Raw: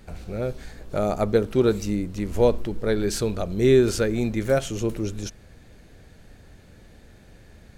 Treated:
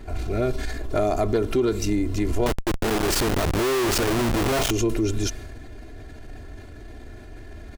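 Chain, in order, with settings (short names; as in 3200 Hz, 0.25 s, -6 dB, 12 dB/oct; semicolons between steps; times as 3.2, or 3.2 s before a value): self-modulated delay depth 0.053 ms; comb 2.9 ms, depth 85%; transient shaper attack -4 dB, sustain +4 dB; compressor 8:1, threshold -25 dBFS, peak gain reduction 15.5 dB; 2.46–4.71 Schmitt trigger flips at -38 dBFS; mismatched tape noise reduction decoder only; gain +6.5 dB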